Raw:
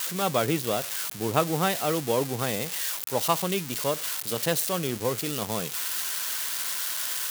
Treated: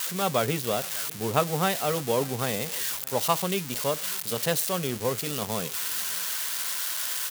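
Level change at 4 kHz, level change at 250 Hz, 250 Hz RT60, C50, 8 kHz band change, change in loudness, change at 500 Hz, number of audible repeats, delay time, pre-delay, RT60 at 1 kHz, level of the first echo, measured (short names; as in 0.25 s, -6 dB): 0.0 dB, -1.5 dB, none, none, 0.0 dB, 0.0 dB, 0.0 dB, 1, 0.598 s, none, none, -23.0 dB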